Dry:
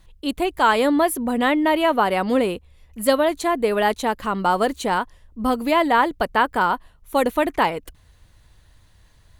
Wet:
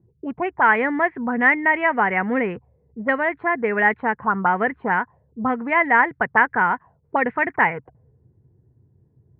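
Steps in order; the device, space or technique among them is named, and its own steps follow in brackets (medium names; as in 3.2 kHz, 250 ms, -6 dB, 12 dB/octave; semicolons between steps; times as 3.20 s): envelope filter bass rig (touch-sensitive low-pass 350–2000 Hz up, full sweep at -17 dBFS; cabinet simulation 88–2200 Hz, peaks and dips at 130 Hz +9 dB, 310 Hz -8 dB, 580 Hz -9 dB, 1.2 kHz -7 dB)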